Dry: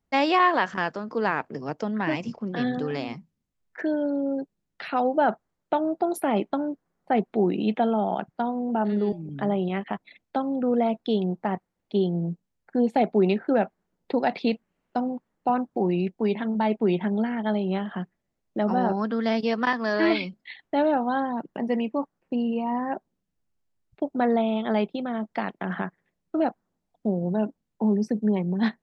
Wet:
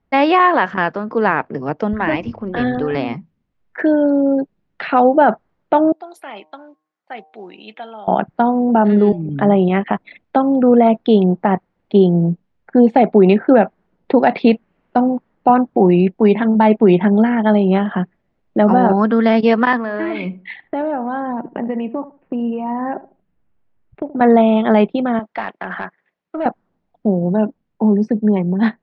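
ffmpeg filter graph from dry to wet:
-filter_complex "[0:a]asettb=1/sr,asplit=3[s0][s1][s2];[s0]atrim=end=1.934[s3];[s1]atrim=start=1.93:end=2.95,asetpts=PTS-STARTPTS,afade=t=in:d=0.004:c=qsin,afade=t=out:st=1.016:d=0.004:c=qsin,lowpass=6500,lowshelf=f=110:t=q:w=3:g=12.5,bandreject=f=105.4:t=h:w=4,bandreject=f=210.8:t=h:w=4,bandreject=f=316.2:t=h:w=4[s4];[s2]atrim=start=2.946[s5];[s3][s4]acrossfade=d=0.004:c1=hsin:c2=qsin[s6];[s6][s5]acrossfade=d=0.004:c1=qsin:c2=hsin,asettb=1/sr,asplit=3[s7][s8][s9];[s7]atrim=end=5.924[s10];[s8]atrim=start=5.92:end=8.08,asetpts=PTS-STARTPTS,afade=t=in:d=0.004:c=qsin,afade=t=out:st=2.156:d=0.004:c=qsin,aderivative,bandreject=f=154.9:t=h:w=4,bandreject=f=309.8:t=h:w=4,bandreject=f=464.7:t=h:w=4,bandreject=f=619.6:t=h:w=4,bandreject=f=774.5:t=h:w=4,bandreject=f=929.4:t=h:w=4,bandreject=f=1084.3:t=h:w=4[s11];[s9]atrim=start=8.076[s12];[s10][s11]acrossfade=d=0.004:c1=hsin:c2=qsin[s13];[s13][s12]acrossfade=d=0.004:c1=qsin:c2=hsin,asettb=1/sr,asplit=3[s14][s15][s16];[s14]atrim=end=19.774[s17];[s15]atrim=start=19.77:end=24.21,asetpts=PTS-STARTPTS,afade=t=in:d=0.004:c=qsin,afade=t=out:st=4.436:d=0.004:c=qsin,lowpass=2900,acompressor=threshold=0.0282:ratio=5:attack=3.2:release=140:knee=1:detection=peak,asplit=2[s18][s19];[s19]adelay=76,lowpass=f=1000:p=1,volume=0.188,asplit=2[s20][s21];[s21]adelay=76,lowpass=f=1000:p=1,volume=0.25,asplit=2[s22][s23];[s23]adelay=76,lowpass=f=1000:p=1,volume=0.25[s24];[s18][s20][s22][s24]amix=inputs=4:normalize=0,atrim=end_sample=195804[s25];[s16]atrim=start=24.206[s26];[s17][s25]acrossfade=d=0.004:c1=hsin:c2=qsin[s27];[s27][s26]acrossfade=d=0.004:c1=qsin:c2=hsin,asettb=1/sr,asplit=3[s28][s29][s30];[s28]atrim=end=25.194[s31];[s29]atrim=start=25.19:end=26.46,asetpts=PTS-STARTPTS,afade=t=in:d=0.004:c=qsin,afade=t=out:st=1.266:d=0.004:c=qsin,highpass=f=940:p=1,aeval=exprs='(tanh(17.8*val(0)+0.05)-tanh(0.05))/17.8':c=same[s32];[s30]atrim=start=26.456[s33];[s31][s32]acrossfade=d=0.004:c1=hsin:c2=qsin[s34];[s34][s33]acrossfade=d=0.004:c1=qsin:c2=hsin,lowpass=2600,dynaudnorm=f=500:g=13:m=1.41,alimiter=level_in=3.35:limit=0.891:release=50:level=0:latency=1,volume=0.891"

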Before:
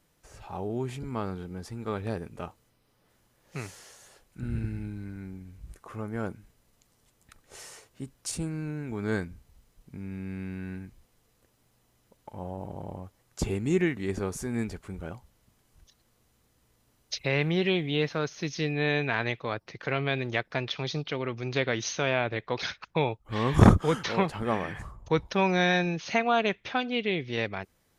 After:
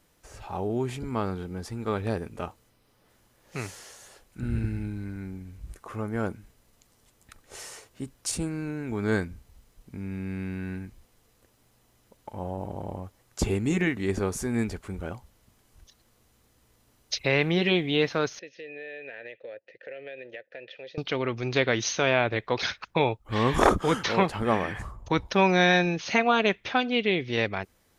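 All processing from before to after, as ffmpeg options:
-filter_complex "[0:a]asettb=1/sr,asplit=3[s0][s1][s2];[s0]atrim=end=18.394[s3];[s1]atrim=start=18.39:end=20.98,asetpts=PTS-STARTPTS,afade=t=in:d=0.004:c=qsin,afade=t=out:st=2.586:d=0.004:c=qsin,asplit=3[s4][s5][s6];[s4]bandpass=f=530:t=q:w=8,volume=1[s7];[s5]bandpass=f=1840:t=q:w=8,volume=0.501[s8];[s6]bandpass=f=2480:t=q:w=8,volume=0.355[s9];[s7][s8][s9]amix=inputs=3:normalize=0,acompressor=threshold=0.01:ratio=6:attack=3.2:release=140:knee=1:detection=peak[s10];[s2]atrim=start=20.976[s11];[s3][s10]acrossfade=d=0.004:c1=hsin:c2=qsin[s12];[s12][s11]acrossfade=d=0.004:c1=qsin:c2=hsin,afftfilt=real='re*lt(hypot(re,im),0.631)':imag='im*lt(hypot(re,im),0.631)':win_size=1024:overlap=0.75,equalizer=f=150:w=4.4:g=-6,volume=1.58"

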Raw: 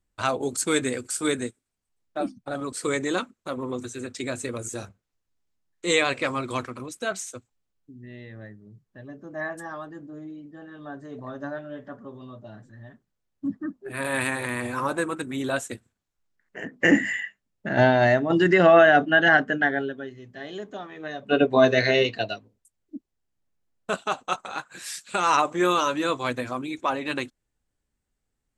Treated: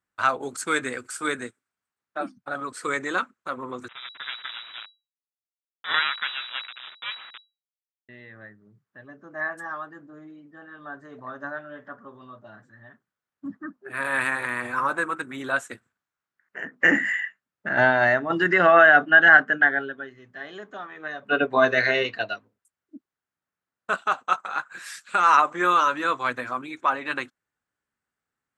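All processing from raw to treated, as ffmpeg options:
-filter_complex "[0:a]asettb=1/sr,asplit=3[s0][s1][s2];[s0]atrim=end=3.884[s3];[s1]atrim=start=3.88:end=8.09,asetpts=PTS-STARTPTS,afade=t=in:d=0.004:c=qsin,afade=t=out:st=4.206:d=0.004:c=qsin,bandreject=f=50:t=h:w=6,bandreject=f=100:t=h:w=6,bandreject=f=150:t=h:w=6,bandreject=f=200:t=h:w=6,bandreject=f=250:t=h:w=6,bandreject=f=300:t=h:w=6,bandreject=f=350:t=h:w=6,bandreject=f=400:t=h:w=6,acrusher=bits=3:dc=4:mix=0:aa=0.000001,lowpass=f=3300:t=q:w=0.5098,lowpass=f=3300:t=q:w=0.6013,lowpass=f=3300:t=q:w=0.9,lowpass=f=3300:t=q:w=2.563,afreqshift=-3900[s4];[s2]atrim=start=8.086[s5];[s3][s4]acrossfade=d=0.004:c1=hsin:c2=qsin[s6];[s6][s5]acrossfade=d=0.004:c1=qsin:c2=hsin,highpass=110,equalizer=f=1400:w=0.93:g=14,volume=0.447"

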